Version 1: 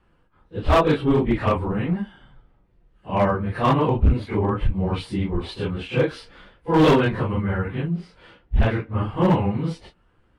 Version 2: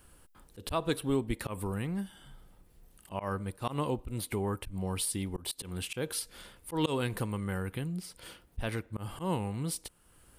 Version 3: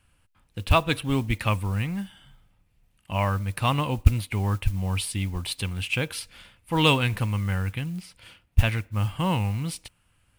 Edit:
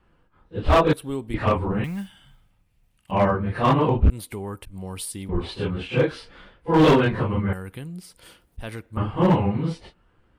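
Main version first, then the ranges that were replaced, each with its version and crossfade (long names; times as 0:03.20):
1
0:00.93–0:01.34: punch in from 2
0:01.84–0:03.11: punch in from 3
0:04.10–0:05.29: punch in from 2
0:07.53–0:08.97: punch in from 2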